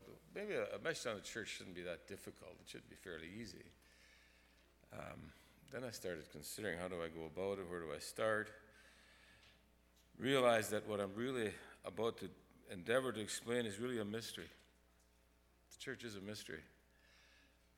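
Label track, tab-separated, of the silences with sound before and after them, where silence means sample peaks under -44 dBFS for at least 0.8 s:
3.610000	4.930000	silence
8.480000	10.200000	silence
14.430000	15.810000	silence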